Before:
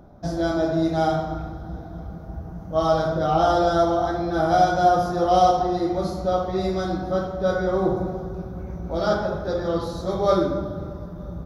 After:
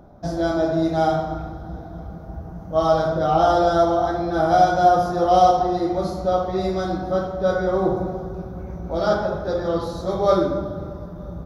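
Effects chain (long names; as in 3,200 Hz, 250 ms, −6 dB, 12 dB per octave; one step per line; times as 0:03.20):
parametric band 710 Hz +2.5 dB 1.7 octaves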